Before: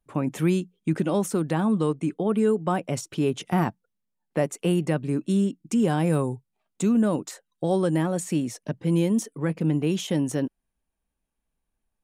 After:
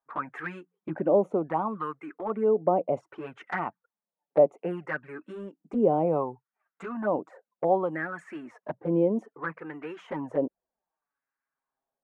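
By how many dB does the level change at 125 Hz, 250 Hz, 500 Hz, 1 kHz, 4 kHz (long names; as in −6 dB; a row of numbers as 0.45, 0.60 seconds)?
−13.0 dB, −9.0 dB, +0.5 dB, +1.5 dB, below −15 dB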